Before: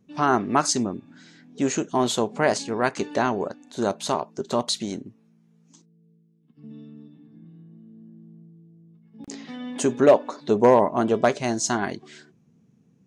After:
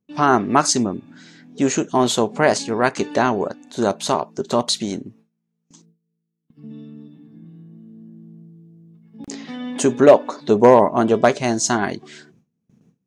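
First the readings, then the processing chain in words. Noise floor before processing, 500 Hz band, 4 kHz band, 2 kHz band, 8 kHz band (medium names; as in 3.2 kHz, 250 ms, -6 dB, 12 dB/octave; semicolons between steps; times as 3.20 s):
-61 dBFS, +5.0 dB, +5.0 dB, +5.0 dB, +5.0 dB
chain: gate with hold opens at -50 dBFS; trim +5 dB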